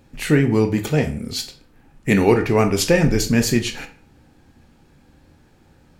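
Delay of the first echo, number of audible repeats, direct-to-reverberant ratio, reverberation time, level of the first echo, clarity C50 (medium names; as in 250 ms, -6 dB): no echo, no echo, 6.0 dB, 0.45 s, no echo, 12.5 dB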